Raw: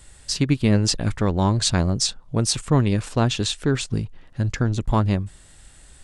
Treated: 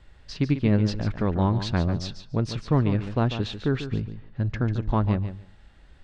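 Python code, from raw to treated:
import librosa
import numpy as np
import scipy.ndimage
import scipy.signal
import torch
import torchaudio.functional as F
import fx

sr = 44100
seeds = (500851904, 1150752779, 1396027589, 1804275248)

p1 = fx.air_absorb(x, sr, metres=260.0)
p2 = fx.comb_fb(p1, sr, f0_hz=210.0, decay_s=1.5, harmonics='all', damping=0.0, mix_pct=30)
y = p2 + fx.echo_feedback(p2, sr, ms=144, feedback_pct=16, wet_db=-10.5, dry=0)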